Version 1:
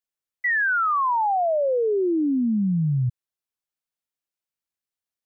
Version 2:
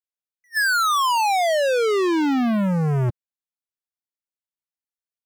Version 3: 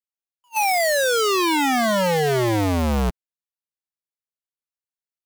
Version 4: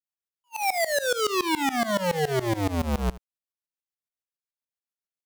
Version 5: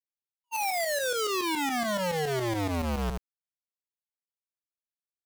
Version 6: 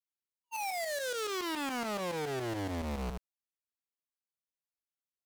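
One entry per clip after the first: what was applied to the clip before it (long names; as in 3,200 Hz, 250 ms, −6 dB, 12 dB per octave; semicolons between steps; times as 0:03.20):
dynamic equaliser 170 Hz, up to −6 dB, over −35 dBFS, Q 2.8; leveller curve on the samples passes 5; level that may rise only so fast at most 550 dB per second
sub-harmonics by changed cycles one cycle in 2, inverted
shaped tremolo saw up 7.1 Hz, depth 95%; single-tap delay 77 ms −18 dB; level −1.5 dB
leveller curve on the samples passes 5; level −8 dB
highs frequency-modulated by the lows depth 0.66 ms; level −6.5 dB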